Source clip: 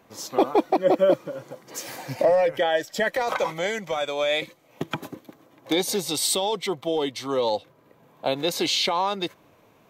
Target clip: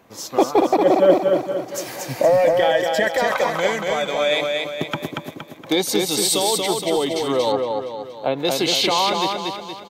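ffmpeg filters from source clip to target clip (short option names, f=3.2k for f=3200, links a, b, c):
-filter_complex "[0:a]aecho=1:1:234|468|702|936|1170|1404:0.668|0.314|0.148|0.0694|0.0326|0.0153,asettb=1/sr,asplit=3[a][b][c];[a]atrim=end=7.524[d];[b]atrim=start=7.52:end=8.45,asetpts=PTS-STARTPTS,afade=t=in:d=0.004:c=qsin,afade=t=out:st=0.926:d=0.004:c=qsin,acrossover=split=2800[e][f];[f]acompressor=threshold=-51dB:ratio=4:attack=1:release=60[g];[e][g]amix=inputs=2:normalize=0[h];[c]atrim=start=8.446[i];[d][h]acrossfade=d=0.004:c1=hsin:c2=qsin[j];[j][i]acrossfade=d=0.004:c1=qsin:c2=hsin,volume=3.5dB"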